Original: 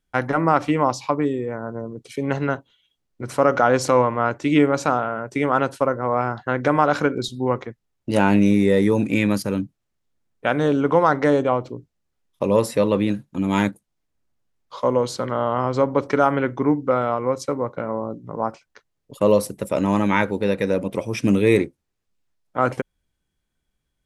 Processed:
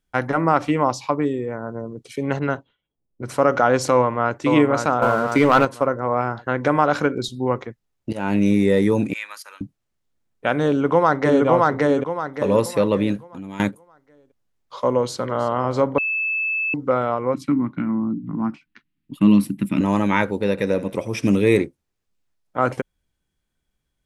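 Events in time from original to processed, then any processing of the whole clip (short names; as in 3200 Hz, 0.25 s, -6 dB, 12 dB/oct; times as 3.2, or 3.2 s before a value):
2.39–3.23 low-pass opened by the level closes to 530 Hz, open at -18.5 dBFS
3.93–4.4 echo throw 0.53 s, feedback 45%, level -5.5 dB
5.02–5.65 sample leveller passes 2
8.13–8.62 fade in equal-power, from -19 dB
9.13–9.61 ladder high-pass 940 Hz, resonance 30%
10.68–11.46 echo throw 0.57 s, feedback 35%, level -0.5 dB
13.16–13.6 compressor 3:1, threshold -34 dBFS
14.96–15.48 echo throw 0.32 s, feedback 50%, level -15.5 dB
15.98–16.74 bleep 2620 Hz -20 dBFS
17.34–19.81 EQ curve 110 Hz 0 dB, 190 Hz +11 dB, 300 Hz +11 dB, 500 Hz -24 dB, 730 Hz -11 dB, 1100 Hz -5 dB, 2600 Hz +5 dB, 4300 Hz -4 dB, 6300 Hz -12 dB, 11000 Hz -4 dB
20.49–21.46 thinning echo 83 ms, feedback 47%, level -16 dB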